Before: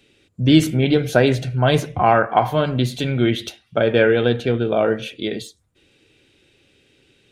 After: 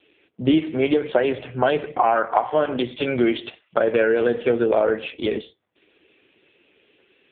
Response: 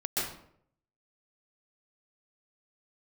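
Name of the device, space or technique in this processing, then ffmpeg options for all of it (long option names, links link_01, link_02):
voicemail: -filter_complex "[0:a]asettb=1/sr,asplit=3[link_01][link_02][link_03];[link_01]atrim=end=0.594[link_04];[link_02]atrim=start=0.59:end=1.49,asetpts=PTS-STARTPTS,afade=type=in:duration=0.004:curve=qsin,afade=type=out:start_time=0.896:duration=0.004:curve=qsin,lowshelf=frequency=320:gain=-4.5[link_05];[link_03]atrim=start=1.486[link_06];[link_04][link_05]acrossfade=duration=0.004:curve1=hsin:curve2=qsin[link_07];[link_07][link_06]acrossfade=duration=0.004:curve1=qsin:curve2=hsin,asplit=3[link_08][link_09][link_10];[link_08]afade=type=out:start_time=4.25:duration=0.02[link_11];[link_09]lowpass=11000,afade=type=in:start_time=4.25:duration=0.02,afade=type=out:start_time=4.96:duration=0.02[link_12];[link_10]afade=type=in:start_time=4.96:duration=0.02[link_13];[link_11][link_12][link_13]amix=inputs=3:normalize=0,highshelf=frequency=5800:gain=5,asplit=3[link_14][link_15][link_16];[link_14]afade=type=out:start_time=2.57:duration=0.02[link_17];[link_15]highpass=frequency=170:poles=1,afade=type=in:start_time=2.57:duration=0.02,afade=type=out:start_time=3.14:duration=0.02[link_18];[link_16]afade=type=in:start_time=3.14:duration=0.02[link_19];[link_17][link_18][link_19]amix=inputs=3:normalize=0,highpass=330,lowpass=2900,acompressor=threshold=-20dB:ratio=8,volume=6.5dB" -ar 8000 -c:a libopencore_amrnb -b:a 5150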